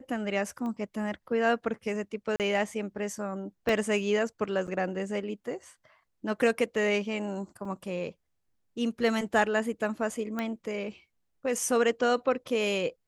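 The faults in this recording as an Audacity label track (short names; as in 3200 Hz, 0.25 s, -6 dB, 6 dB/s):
0.660000	0.660000	pop -27 dBFS
2.360000	2.400000	gap 38 ms
3.690000	3.690000	gap 2 ms
4.670000	4.680000	gap 7.6 ms
7.650000	7.650000	gap 3.8 ms
10.390000	10.390000	pop -19 dBFS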